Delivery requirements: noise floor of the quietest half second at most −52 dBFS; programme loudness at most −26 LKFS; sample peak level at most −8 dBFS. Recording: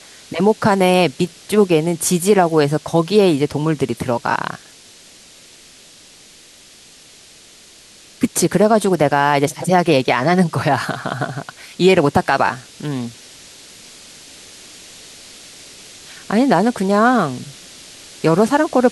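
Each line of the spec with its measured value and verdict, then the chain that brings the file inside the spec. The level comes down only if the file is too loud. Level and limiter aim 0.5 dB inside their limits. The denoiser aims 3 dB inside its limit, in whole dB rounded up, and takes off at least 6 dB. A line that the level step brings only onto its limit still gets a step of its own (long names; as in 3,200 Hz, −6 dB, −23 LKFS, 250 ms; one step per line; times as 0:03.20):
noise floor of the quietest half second −45 dBFS: out of spec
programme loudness −16.5 LKFS: out of spec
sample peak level −2.0 dBFS: out of spec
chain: level −10 dB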